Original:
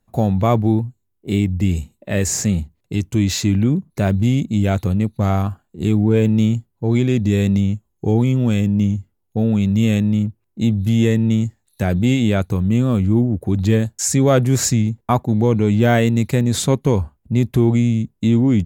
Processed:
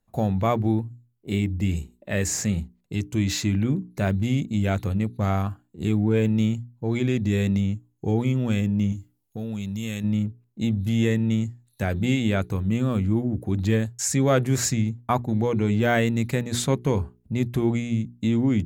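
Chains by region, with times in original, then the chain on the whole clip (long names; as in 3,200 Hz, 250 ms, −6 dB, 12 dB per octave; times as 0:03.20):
0:08.92–0:10.04: high-shelf EQ 3,100 Hz +11.5 dB + downward compressor 2 to 1, threshold −26 dBFS
whole clip: mains-hum notches 60/120/180/240/300/360/420 Hz; dynamic equaliser 1,800 Hz, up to +4 dB, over −38 dBFS, Q 1; level −6 dB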